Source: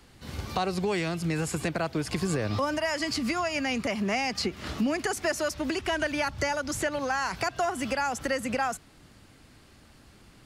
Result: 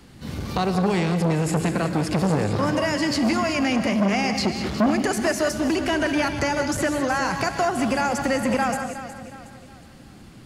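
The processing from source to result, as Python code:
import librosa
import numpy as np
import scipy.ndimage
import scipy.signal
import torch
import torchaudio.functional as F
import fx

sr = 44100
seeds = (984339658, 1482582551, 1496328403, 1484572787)

p1 = fx.peak_eq(x, sr, hz=190.0, db=8.0, octaves=1.7)
p2 = p1 + fx.echo_feedback(p1, sr, ms=365, feedback_pct=41, wet_db=-13.0, dry=0)
p3 = fx.rev_gated(p2, sr, seeds[0], gate_ms=220, shape='rising', drr_db=7.0)
p4 = fx.transformer_sat(p3, sr, knee_hz=680.0)
y = p4 * librosa.db_to_amplitude(4.0)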